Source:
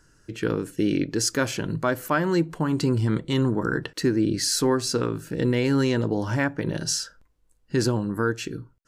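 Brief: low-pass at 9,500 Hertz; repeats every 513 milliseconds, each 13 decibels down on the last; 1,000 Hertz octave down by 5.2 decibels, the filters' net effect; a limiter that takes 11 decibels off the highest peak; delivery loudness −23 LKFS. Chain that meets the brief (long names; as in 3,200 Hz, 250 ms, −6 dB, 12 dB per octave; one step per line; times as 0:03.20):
low-pass filter 9,500 Hz
parametric band 1,000 Hz −7 dB
brickwall limiter −23 dBFS
repeating echo 513 ms, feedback 22%, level −13 dB
level +9.5 dB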